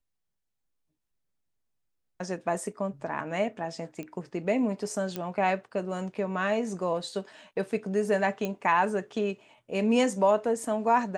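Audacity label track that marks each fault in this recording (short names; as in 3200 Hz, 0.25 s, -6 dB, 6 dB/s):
4.030000	4.030000	pop -26 dBFS
5.160000	5.160000	pop -17 dBFS
8.450000	8.450000	pop -18 dBFS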